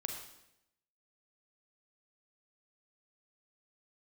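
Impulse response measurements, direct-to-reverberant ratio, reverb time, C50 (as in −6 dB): 2.5 dB, 0.85 s, 4.5 dB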